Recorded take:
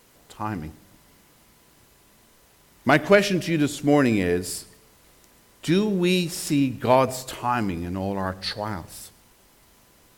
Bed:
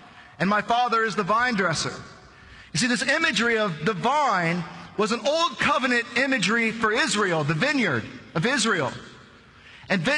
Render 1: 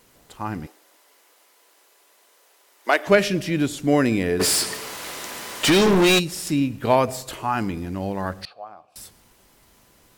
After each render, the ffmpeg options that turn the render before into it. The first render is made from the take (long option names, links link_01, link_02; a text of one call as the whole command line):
ffmpeg -i in.wav -filter_complex "[0:a]asettb=1/sr,asplit=3[link_01][link_02][link_03];[link_01]atrim=end=0.664[link_04];[link_02]atrim=start=0.66:end=3.07,asetpts=PTS-STARTPTS,afade=type=in:duration=0.004:curve=qsin,afade=type=out:start_time=2.406:duration=0.004:curve=qsin,highpass=frequency=410:width=0.5412,highpass=frequency=410:width=1.3066[link_05];[link_03]atrim=start=3.066[link_06];[link_04][link_05]acrossfade=duration=0.004:curve1=hsin:curve2=qsin[link_07];[link_07][link_06]acrossfade=duration=0.004:curve1=qsin:curve2=hsin,asplit=3[link_08][link_09][link_10];[link_08]afade=type=out:start_time=4.39:duration=0.02[link_11];[link_09]asplit=2[link_12][link_13];[link_13]highpass=frequency=720:poles=1,volume=32dB,asoftclip=type=tanh:threshold=-9.5dB[link_14];[link_12][link_14]amix=inputs=2:normalize=0,lowpass=frequency=5900:poles=1,volume=-6dB,afade=type=in:start_time=4.39:duration=0.02,afade=type=out:start_time=6.18:duration=0.02[link_15];[link_10]afade=type=in:start_time=6.18:duration=0.02[link_16];[link_11][link_15][link_16]amix=inputs=3:normalize=0,asettb=1/sr,asplit=3[link_17][link_18][link_19];[link_17]atrim=end=8.454[link_20];[link_18]atrim=start=8.45:end=8.96,asetpts=PTS-STARTPTS,afade=type=in:duration=0.004:curve=qsin,afade=type=out:start_time=0.506:duration=0.004:curve=qsin,asplit=3[link_21][link_22][link_23];[link_21]bandpass=frequency=730:width_type=q:width=8,volume=0dB[link_24];[link_22]bandpass=frequency=1090:width_type=q:width=8,volume=-6dB[link_25];[link_23]bandpass=frequency=2440:width_type=q:width=8,volume=-9dB[link_26];[link_24][link_25][link_26]amix=inputs=3:normalize=0[link_27];[link_19]atrim=start=8.956[link_28];[link_20][link_27]acrossfade=duration=0.004:curve1=hsin:curve2=qsin[link_29];[link_29][link_28]acrossfade=duration=0.004:curve1=qsin:curve2=hsin" out.wav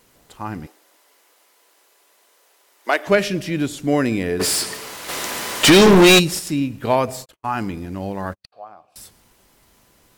ffmpeg -i in.wav -filter_complex "[0:a]asplit=3[link_01][link_02][link_03];[link_01]afade=type=out:start_time=5.08:duration=0.02[link_04];[link_02]acontrast=90,afade=type=in:start_time=5.08:duration=0.02,afade=type=out:start_time=6.38:duration=0.02[link_05];[link_03]afade=type=in:start_time=6.38:duration=0.02[link_06];[link_04][link_05][link_06]amix=inputs=3:normalize=0,asplit=3[link_07][link_08][link_09];[link_07]afade=type=out:start_time=7.24:duration=0.02[link_10];[link_08]agate=range=-56dB:threshold=-32dB:ratio=16:release=100:detection=peak,afade=type=in:start_time=7.24:duration=0.02,afade=type=out:start_time=8.52:duration=0.02[link_11];[link_09]afade=type=in:start_time=8.52:duration=0.02[link_12];[link_10][link_11][link_12]amix=inputs=3:normalize=0" out.wav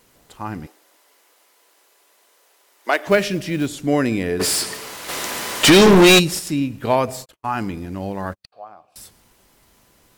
ffmpeg -i in.wav -filter_complex "[0:a]asettb=1/sr,asplit=3[link_01][link_02][link_03];[link_01]atrim=end=2.944[link_04];[link_02]atrim=start=2.94:end=3.68,asetpts=PTS-STARTPTS,afade=type=in:duration=0.004:curve=qsin,afade=type=out:start_time=0.736:duration=0.004:curve=qsin,acrusher=bits=7:mode=log:mix=0:aa=0.000001[link_05];[link_03]atrim=start=3.676[link_06];[link_04][link_05]acrossfade=duration=0.004:curve1=hsin:curve2=qsin[link_07];[link_07][link_06]acrossfade=duration=0.004:curve1=qsin:curve2=hsin" out.wav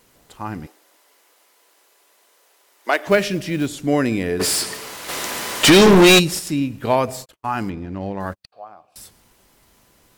ffmpeg -i in.wav -filter_complex "[0:a]asplit=3[link_01][link_02][link_03];[link_01]afade=type=out:start_time=7.69:duration=0.02[link_04];[link_02]adynamicsmooth=sensitivity=3.5:basefreq=2800,afade=type=in:start_time=7.69:duration=0.02,afade=type=out:start_time=8.19:duration=0.02[link_05];[link_03]afade=type=in:start_time=8.19:duration=0.02[link_06];[link_04][link_05][link_06]amix=inputs=3:normalize=0" out.wav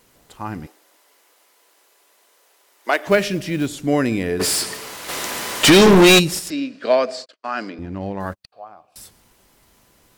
ffmpeg -i in.wav -filter_complex "[0:a]asettb=1/sr,asplit=3[link_01][link_02][link_03];[link_01]atrim=end=6.504[link_04];[link_02]atrim=start=6.5:end=7.79,asetpts=PTS-STARTPTS,afade=type=in:duration=0.004:curve=qsin,afade=type=out:start_time=1.286:duration=0.004:curve=qsin,highpass=frequency=260:width=0.5412,highpass=frequency=260:width=1.3066,equalizer=frequency=350:width_type=q:width=4:gain=-5,equalizer=frequency=610:width_type=q:width=4:gain=7,equalizer=frequency=870:width_type=q:width=4:gain=-10,equalizer=frequency=1600:width_type=q:width=4:gain=4,equalizer=frequency=4600:width_type=q:width=4:gain=9,equalizer=frequency=6600:width_type=q:width=4:gain=-3,lowpass=frequency=6900:width=0.5412,lowpass=frequency=6900:width=1.3066[link_05];[link_03]atrim=start=7.786[link_06];[link_04][link_05]acrossfade=duration=0.004:curve1=hsin:curve2=qsin[link_07];[link_07][link_06]acrossfade=duration=0.004:curve1=qsin:curve2=hsin" out.wav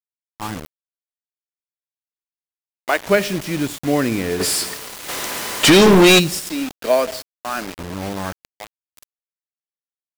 ffmpeg -i in.wav -af "acrusher=bits=4:mix=0:aa=0.000001" out.wav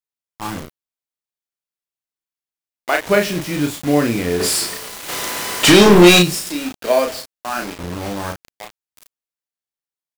ffmpeg -i in.wav -filter_complex "[0:a]asplit=2[link_01][link_02];[link_02]adelay=34,volume=-4dB[link_03];[link_01][link_03]amix=inputs=2:normalize=0" out.wav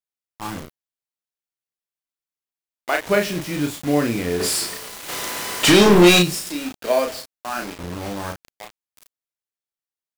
ffmpeg -i in.wav -af "volume=-3.5dB" out.wav